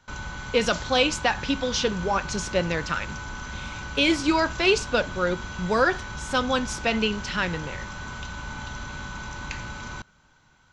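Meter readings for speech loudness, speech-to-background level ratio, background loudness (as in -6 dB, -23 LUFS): -25.0 LUFS, 10.5 dB, -35.5 LUFS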